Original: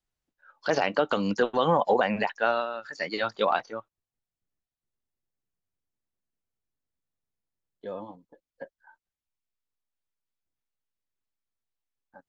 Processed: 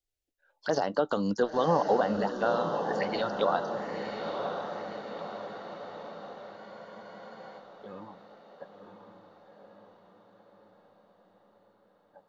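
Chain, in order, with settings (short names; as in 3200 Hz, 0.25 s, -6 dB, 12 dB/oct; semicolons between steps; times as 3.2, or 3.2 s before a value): envelope phaser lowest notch 190 Hz, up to 2400 Hz, full sweep at -26 dBFS; diffused feedback echo 1.024 s, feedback 56%, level -5.5 dB; spectral freeze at 6.59, 1.00 s; gain -1.5 dB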